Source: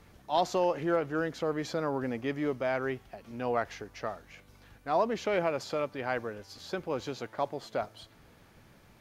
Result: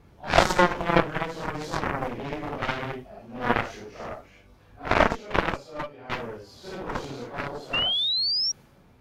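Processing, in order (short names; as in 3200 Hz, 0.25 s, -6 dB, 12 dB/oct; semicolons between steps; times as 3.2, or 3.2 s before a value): phase scrambler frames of 0.2 s; 4.94–6.1 gate -29 dBFS, range -11 dB; bell 1800 Hz -4 dB 0.77 oct; added harmonics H 3 -27 dB, 4 -11 dB, 7 -14 dB, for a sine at -14 dBFS; 7.73–8.52 painted sound rise 2700–5700 Hz -34 dBFS; mismatched tape noise reduction decoder only; gain +9 dB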